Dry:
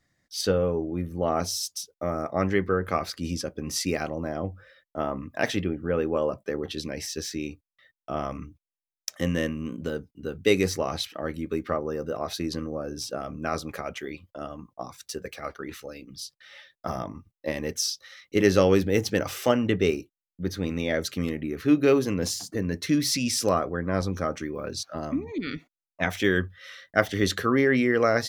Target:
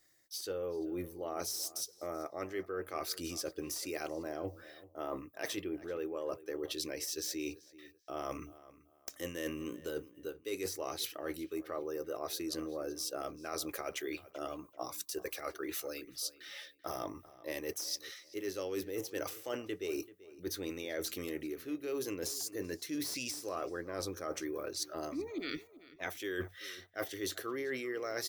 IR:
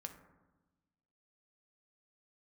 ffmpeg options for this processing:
-filter_complex "[0:a]aemphasis=mode=production:type=75fm,deesser=0.4,lowshelf=frequency=270:width_type=q:width=3:gain=-6.5,areverse,acompressor=threshold=-32dB:ratio=12,areverse,asplit=2[link_01][link_02];[link_02]adelay=386,lowpass=frequency=3700:poles=1,volume=-18dB,asplit=2[link_03][link_04];[link_04]adelay=386,lowpass=frequency=3700:poles=1,volume=0.28[link_05];[link_01][link_03][link_05]amix=inputs=3:normalize=0,volume=-3dB"

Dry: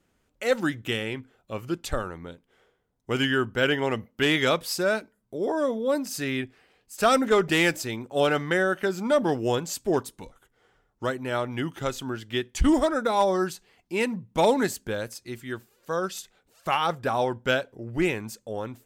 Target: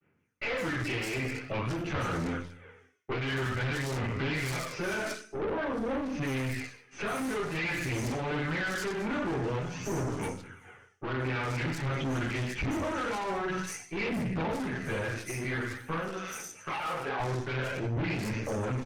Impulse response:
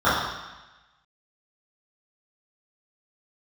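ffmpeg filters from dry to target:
-filter_complex "[0:a]acrossover=split=120[link_01][link_02];[link_02]acompressor=threshold=-34dB:ratio=5[link_03];[link_01][link_03]amix=inputs=2:normalize=0,agate=range=-33dB:threshold=-58dB:ratio=3:detection=peak[link_04];[1:a]atrim=start_sample=2205,asetrate=74970,aresample=44100[link_05];[link_04][link_05]afir=irnorm=-1:irlink=0,aphaser=in_gain=1:out_gain=1:delay=2.8:decay=0.41:speed=0.49:type=sinusoidal,aeval=exprs='(tanh(15.8*val(0)+0.7)-tanh(0.7))/15.8':channel_layout=same,tremolo=f=1.4:d=0.72,acrossover=split=4500[link_06][link_07];[link_07]adelay=150[link_08];[link_06][link_08]amix=inputs=2:normalize=0,alimiter=level_in=4dB:limit=-24dB:level=0:latency=1:release=19,volume=-4dB,asettb=1/sr,asplit=3[link_09][link_10][link_11];[link_09]atrim=end=16.084[link_12];[link_10]atrim=start=16.08:end=17.2,asetpts=PTS-STARTPTS,afade=type=in:duration=0.004:curve=qsin,afade=type=out:start_time=1.116:duration=0.004:curve=qsin,acrossover=split=240|3000[link_13][link_14][link_15];[link_13]acompressor=threshold=-51dB:ratio=6[link_16];[link_16][link_14][link_15]amix=inputs=3:normalize=0[link_17];[link_11]atrim=start=17.196[link_18];[link_12][link_17]acrossfade=duration=0.004:curve1=hsin:curve2=qsin[link_19];[link_19][link_18]acrossfade=duration=0.004:curve1=qsin:curve2=hsin,volume=3.5dB" -ar 48000 -c:a libopus -b:a 48k

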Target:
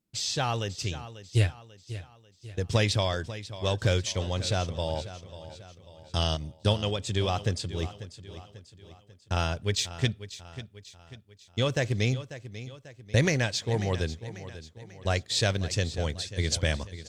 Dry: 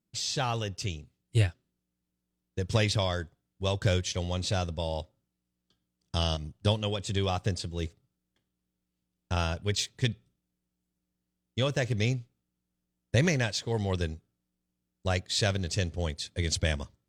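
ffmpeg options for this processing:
ffmpeg -i in.wav -af "equalizer=frequency=180:width=7.6:gain=-3.5,aecho=1:1:542|1084|1626|2168:0.2|0.0938|0.0441|0.0207,volume=1.5dB" out.wav

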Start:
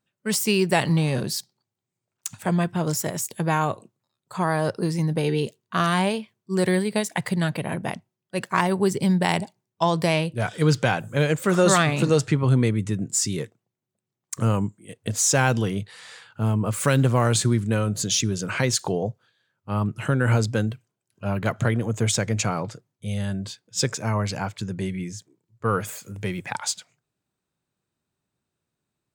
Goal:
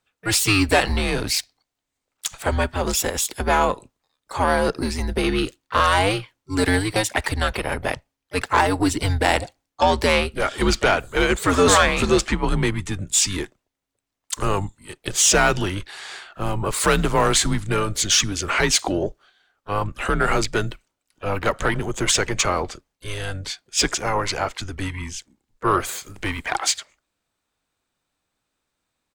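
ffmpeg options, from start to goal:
ffmpeg -i in.wav -filter_complex "[0:a]asplit=3[link_01][link_02][link_03];[link_02]asetrate=22050,aresample=44100,atempo=2,volume=-10dB[link_04];[link_03]asetrate=55563,aresample=44100,atempo=0.793701,volume=-15dB[link_05];[link_01][link_04][link_05]amix=inputs=3:normalize=0,asplit=2[link_06][link_07];[link_07]highpass=frequency=720:poles=1,volume=14dB,asoftclip=type=tanh:threshold=-2.5dB[link_08];[link_06][link_08]amix=inputs=2:normalize=0,lowpass=frequency=7600:poles=1,volume=-6dB,afreqshift=-99,volume=-1dB" out.wav

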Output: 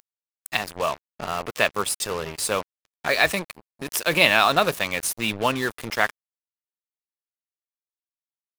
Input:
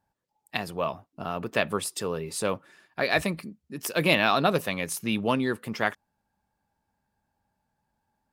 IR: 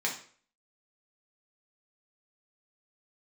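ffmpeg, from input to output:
-af "equalizer=frequency=210:width=0.51:gain=-9.5,acompressor=mode=upward:threshold=-32dB:ratio=2.5,acrusher=bits=5:mix=0:aa=0.5,atempo=0.97,volume=6.5dB"

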